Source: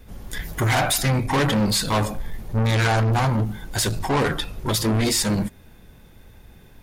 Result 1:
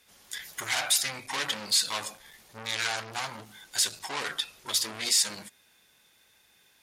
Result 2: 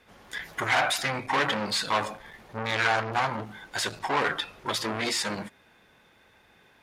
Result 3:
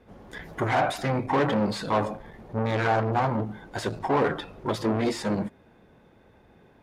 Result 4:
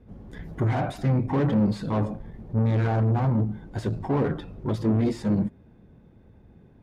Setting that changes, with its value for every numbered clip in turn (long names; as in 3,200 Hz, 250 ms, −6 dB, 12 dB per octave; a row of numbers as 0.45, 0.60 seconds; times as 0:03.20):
resonant band-pass, frequency: 5,900, 1,700, 580, 210 Hertz